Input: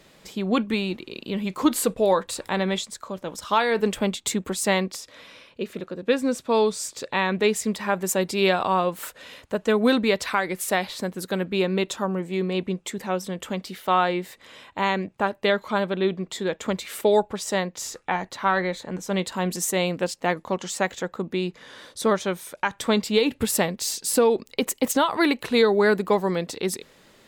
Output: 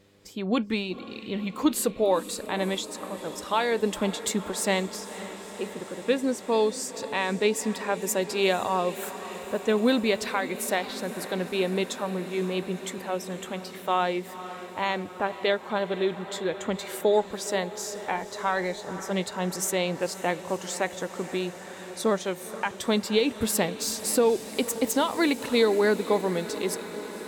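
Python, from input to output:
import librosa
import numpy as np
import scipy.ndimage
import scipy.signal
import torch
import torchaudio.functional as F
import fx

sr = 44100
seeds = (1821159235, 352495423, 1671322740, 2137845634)

y = fx.noise_reduce_blind(x, sr, reduce_db=7)
y = fx.dmg_buzz(y, sr, base_hz=100.0, harmonics=5, level_db=-59.0, tilt_db=0, odd_only=False)
y = fx.echo_diffused(y, sr, ms=499, feedback_pct=78, wet_db=-15.0)
y = fx.dynamic_eq(y, sr, hz=1300.0, q=1.7, threshold_db=-35.0, ratio=4.0, max_db=-4)
y = F.gain(torch.from_numpy(y), -2.5).numpy()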